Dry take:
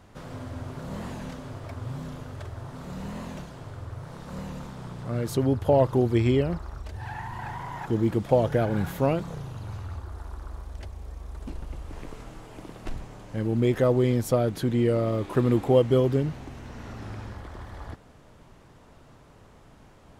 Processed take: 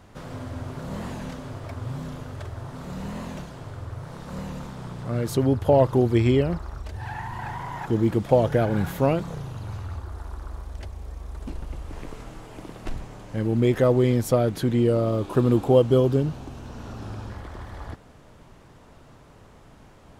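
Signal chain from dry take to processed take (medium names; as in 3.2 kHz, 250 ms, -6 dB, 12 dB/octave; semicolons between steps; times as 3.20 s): 14.79–17.30 s: peaking EQ 2 kHz -10 dB 0.42 oct; trim +2.5 dB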